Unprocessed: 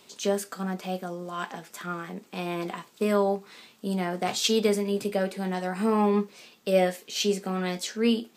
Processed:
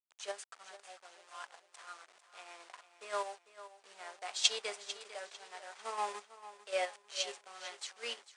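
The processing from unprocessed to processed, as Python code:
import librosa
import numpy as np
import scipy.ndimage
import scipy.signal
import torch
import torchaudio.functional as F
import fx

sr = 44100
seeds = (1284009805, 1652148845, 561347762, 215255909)

p1 = fx.delta_hold(x, sr, step_db=-33.0)
p2 = scipy.signal.sosfilt(scipy.signal.butter(12, 9700.0, 'lowpass', fs=sr, output='sos'), p1)
p3 = fx.level_steps(p2, sr, step_db=23)
p4 = p2 + (p3 * librosa.db_to_amplitude(-2.5))
p5 = scipy.signal.sosfilt(scipy.signal.bessel(4, 920.0, 'highpass', norm='mag', fs=sr, output='sos'), p4)
p6 = p5 + fx.echo_feedback(p5, sr, ms=448, feedback_pct=44, wet_db=-10, dry=0)
p7 = fx.upward_expand(p6, sr, threshold_db=-44.0, expansion=1.5)
y = p7 * librosa.db_to_amplitude(-4.5)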